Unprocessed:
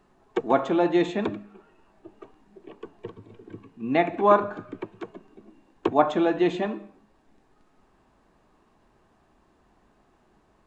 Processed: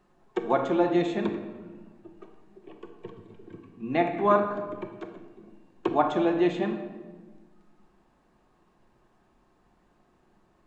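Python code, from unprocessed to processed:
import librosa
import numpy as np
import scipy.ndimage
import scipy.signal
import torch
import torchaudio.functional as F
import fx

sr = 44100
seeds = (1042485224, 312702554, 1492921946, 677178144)

y = fx.room_shoebox(x, sr, seeds[0], volume_m3=1100.0, walls='mixed', distance_m=0.93)
y = F.gain(torch.from_numpy(y), -4.0).numpy()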